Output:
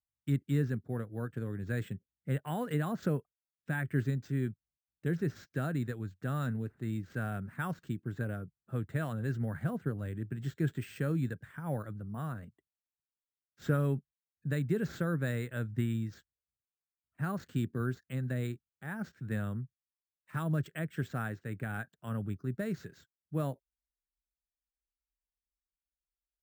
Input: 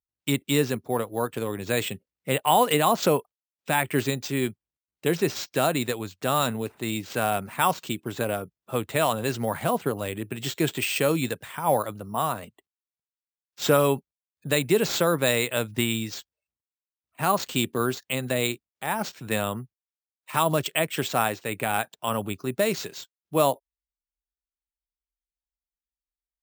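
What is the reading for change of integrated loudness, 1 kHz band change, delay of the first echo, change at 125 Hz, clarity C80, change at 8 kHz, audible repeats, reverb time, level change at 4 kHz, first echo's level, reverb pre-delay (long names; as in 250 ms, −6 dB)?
−10.0 dB, −18.5 dB, no echo audible, −0.5 dB, no reverb audible, −24.0 dB, no echo audible, no reverb audible, −24.0 dB, no echo audible, no reverb audible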